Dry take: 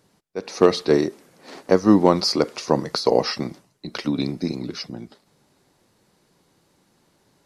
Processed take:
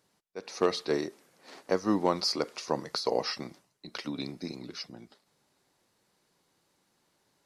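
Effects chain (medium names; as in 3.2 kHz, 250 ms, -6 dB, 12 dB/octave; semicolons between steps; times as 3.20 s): bass shelf 470 Hz -8 dB; trim -7 dB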